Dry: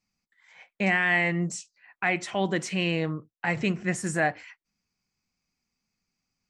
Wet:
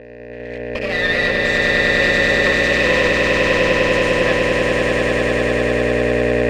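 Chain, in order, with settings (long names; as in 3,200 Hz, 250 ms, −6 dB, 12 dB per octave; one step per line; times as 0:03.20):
frequency shifter +13 Hz
granular cloud 100 ms, grains 20 per second, pitch spread up and down by 0 semitones
mains hum 60 Hz, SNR 11 dB
in parallel at −4 dB: fuzz pedal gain 53 dB, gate −52 dBFS
on the sum: formant filter e
harmonic generator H 4 −9 dB, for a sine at −8 dBFS
on a send: echo that builds up and dies away 100 ms, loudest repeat 8, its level −3.5 dB
on the sum: level +4.5 dB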